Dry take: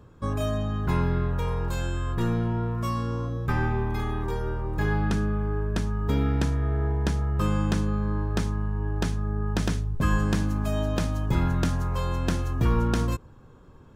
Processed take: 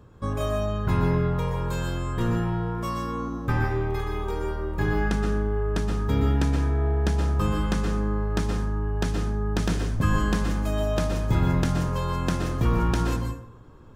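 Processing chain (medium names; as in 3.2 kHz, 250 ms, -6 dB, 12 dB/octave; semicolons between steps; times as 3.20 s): plate-style reverb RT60 0.63 s, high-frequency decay 0.65×, pre-delay 110 ms, DRR 2.5 dB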